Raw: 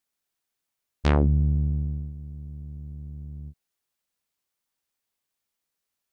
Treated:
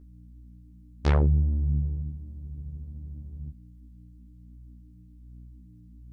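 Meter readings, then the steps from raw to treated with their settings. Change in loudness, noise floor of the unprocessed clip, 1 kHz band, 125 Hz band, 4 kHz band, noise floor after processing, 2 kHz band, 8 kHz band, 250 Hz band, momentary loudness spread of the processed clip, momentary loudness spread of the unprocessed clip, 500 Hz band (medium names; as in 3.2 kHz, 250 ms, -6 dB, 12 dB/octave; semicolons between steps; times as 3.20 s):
-3.5 dB, -84 dBFS, -3.0 dB, -1.0 dB, -4.0 dB, -51 dBFS, -3.0 dB, no reading, -4.5 dB, 19 LU, 18 LU, -2.5 dB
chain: hum 60 Hz, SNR 17 dB; chorus voices 2, 1.3 Hz, delay 13 ms, depth 3 ms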